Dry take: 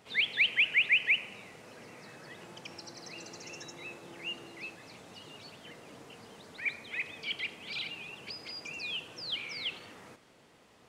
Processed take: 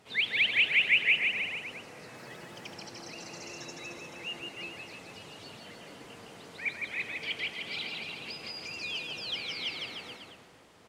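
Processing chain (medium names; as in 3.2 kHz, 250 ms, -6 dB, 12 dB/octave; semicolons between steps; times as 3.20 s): bouncing-ball echo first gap 160 ms, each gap 0.9×, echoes 5; 2.14–2.73 s: added noise white -69 dBFS; AAC 64 kbps 44.1 kHz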